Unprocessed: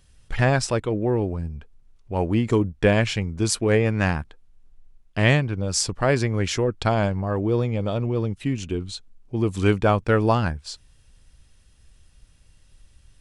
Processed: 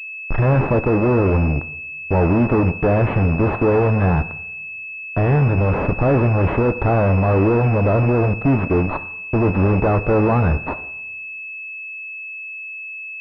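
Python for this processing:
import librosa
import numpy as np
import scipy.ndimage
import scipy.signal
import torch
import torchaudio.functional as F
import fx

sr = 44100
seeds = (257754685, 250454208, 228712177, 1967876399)

y = fx.fuzz(x, sr, gain_db=38.0, gate_db=-35.0)
y = fx.rev_double_slope(y, sr, seeds[0], early_s=0.72, late_s=2.5, knee_db=-28, drr_db=11.0)
y = fx.pwm(y, sr, carrier_hz=2600.0)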